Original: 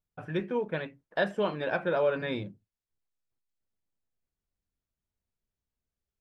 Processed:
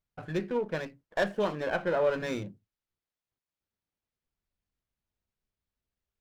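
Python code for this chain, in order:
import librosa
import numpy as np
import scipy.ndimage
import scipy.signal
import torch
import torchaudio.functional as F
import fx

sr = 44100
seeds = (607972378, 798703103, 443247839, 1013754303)

y = fx.lowpass(x, sr, hz=3000.0, slope=12, at=(1.55, 2.07))
y = fx.running_max(y, sr, window=5)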